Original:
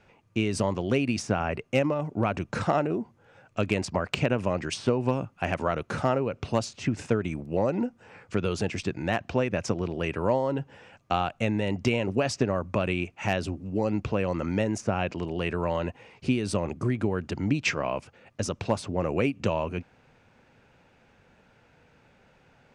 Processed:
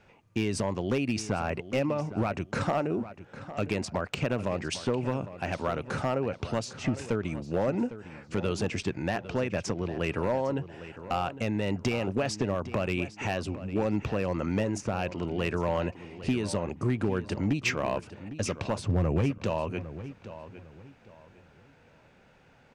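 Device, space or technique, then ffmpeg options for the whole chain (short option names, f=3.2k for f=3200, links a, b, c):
limiter into clipper: -filter_complex "[0:a]asettb=1/sr,asplit=3[a][b][c];[a]atrim=end=18.784[d];[b]atrim=start=18.78:end=19.38,asetpts=PTS-STARTPTS,afade=t=in:d=0.004:c=qsin,afade=t=out:st=0.596:d=0.004:c=qsin,equalizer=f=97:t=o:w=2:g=14.5[e];[c]atrim=start=19.376[f];[d][e]acrossfade=d=0.004:c1=hsin:c2=qsin[g];[g][f]acrossfade=d=0.004:c1=qsin:c2=hsin,alimiter=limit=-15dB:level=0:latency=1:release=401,asoftclip=type=hard:threshold=-19.5dB,asplit=2[h][i];[i]adelay=805,lowpass=f=4.1k:p=1,volume=-13.5dB,asplit=2[j][k];[k]adelay=805,lowpass=f=4.1k:p=1,volume=0.29,asplit=2[l][m];[m]adelay=805,lowpass=f=4.1k:p=1,volume=0.29[n];[h][j][l][n]amix=inputs=4:normalize=0"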